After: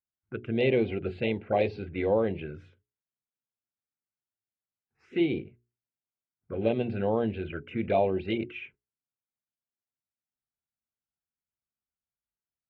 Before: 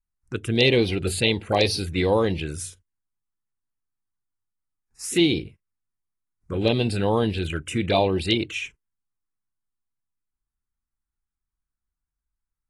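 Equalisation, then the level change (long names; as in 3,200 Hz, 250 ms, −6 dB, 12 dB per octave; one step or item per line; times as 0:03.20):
loudspeaker in its box 160–2,000 Hz, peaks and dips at 170 Hz −7 dB, 300 Hz −8 dB, 460 Hz −4 dB, 840 Hz −5 dB, 1,200 Hz −9 dB, 1,800 Hz −9 dB
parametric band 990 Hz −8 dB 0.21 octaves
mains-hum notches 60/120/180/240/300/360/420 Hz
0.0 dB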